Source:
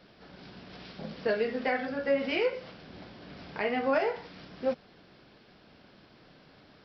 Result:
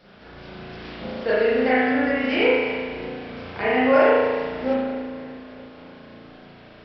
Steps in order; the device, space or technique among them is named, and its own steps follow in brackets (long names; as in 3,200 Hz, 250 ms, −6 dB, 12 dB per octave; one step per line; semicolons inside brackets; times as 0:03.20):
dub delay into a spring reverb (feedback echo with a low-pass in the loop 296 ms, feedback 66%, low-pass 4,900 Hz, level −16 dB; spring reverb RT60 1.5 s, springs 35 ms, chirp 60 ms, DRR −8.5 dB)
level +2 dB